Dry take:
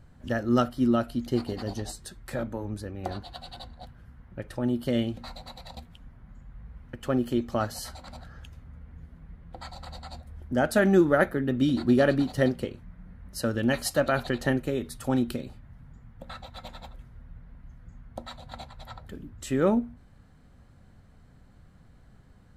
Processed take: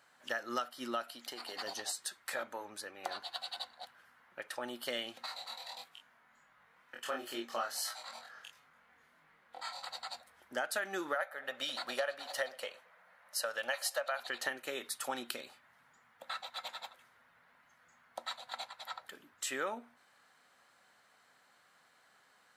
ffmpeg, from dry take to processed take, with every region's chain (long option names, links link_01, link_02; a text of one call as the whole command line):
ffmpeg -i in.wav -filter_complex "[0:a]asettb=1/sr,asplit=3[link_01][link_02][link_03];[link_01]atrim=end=1.104[link_04];[link_02]atrim=start=1.1:end=1.56,asetpts=PTS-STARTPTS,afade=type=in:duration=0.004:curve=qsin,afade=type=out:start_time=0.456:duration=0.004:curve=qsin,lowshelf=frequency=240:gain=-8,bandreject=frequency=6500:width=14,acompressor=threshold=-30dB:ratio=6:attack=3.2:release=140:knee=1:detection=peak[link_05];[link_03]atrim=start=1.556[link_06];[link_04][link_05]acrossfade=duration=0.004:curve1=hsin:curve2=qsin[link_07];[link_07][link_06]acrossfade=duration=0.004:curve1=qsin:curve2=hsin,asettb=1/sr,asplit=3[link_08][link_09][link_10];[link_08]atrim=end=5.264[link_11];[link_09]atrim=start=5.26:end=9.84,asetpts=PTS-STARTPTS,afade=type=in:duration=0.004:curve=qsin,afade=type=out:start_time=4.576:duration=0.004:curve=qsin,flanger=delay=19:depth=3:speed=1.5,asplit=2[link_12][link_13];[link_13]adelay=26,volume=-2.5dB[link_14];[link_12][link_14]amix=inputs=2:normalize=0,atrim=end_sample=201978[link_15];[link_10]atrim=start=9.836[link_16];[link_11][link_15]acrossfade=duration=0.004:curve1=hsin:curve2=qsin[link_17];[link_17][link_16]acrossfade=duration=0.004:curve1=qsin:curve2=hsin,asettb=1/sr,asplit=3[link_18][link_19][link_20];[link_18]atrim=end=11.154[link_21];[link_19]atrim=start=11.15:end=14.2,asetpts=PTS-STARTPTS,afade=type=in:duration=0.004:curve=qsin,afade=type=out:start_time=3.046:duration=0.004:curve=qsin,lowshelf=frequency=450:width_type=q:width=3:gain=-7.5,asplit=2[link_22][link_23];[link_23]adelay=112,lowpass=frequency=2300:poles=1,volume=-23.5dB,asplit=2[link_24][link_25];[link_25]adelay=112,lowpass=frequency=2300:poles=1,volume=0.53,asplit=2[link_26][link_27];[link_27]adelay=112,lowpass=frequency=2300:poles=1,volume=0.53[link_28];[link_22][link_24][link_26][link_28]amix=inputs=4:normalize=0,atrim=end_sample=134505[link_29];[link_20]atrim=start=14.196[link_30];[link_21][link_29]acrossfade=duration=0.004:curve1=hsin:curve2=qsin[link_31];[link_31][link_30]acrossfade=duration=0.004:curve1=qsin:curve2=hsin,highpass=1000,acompressor=threshold=-36dB:ratio=8,volume=3.5dB" out.wav